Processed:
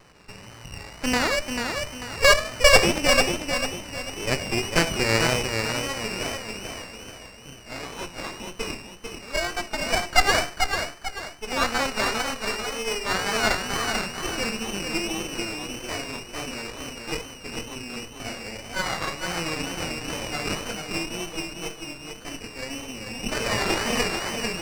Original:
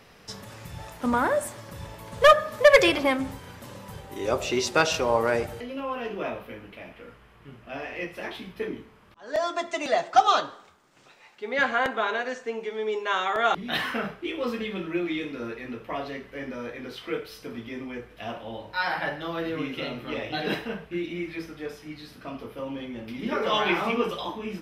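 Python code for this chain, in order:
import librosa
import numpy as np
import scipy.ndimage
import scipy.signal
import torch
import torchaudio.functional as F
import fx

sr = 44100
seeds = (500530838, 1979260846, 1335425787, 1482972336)

y = np.maximum(x, 0.0)
y = fx.echo_feedback(y, sr, ms=443, feedback_pct=38, wet_db=-5.5)
y = fx.freq_invert(y, sr, carrier_hz=2900)
y = fx.wow_flutter(y, sr, seeds[0], rate_hz=2.1, depth_cents=79.0)
y = fx.running_max(y, sr, window=9)
y = F.gain(torch.from_numpy(y), 4.0).numpy()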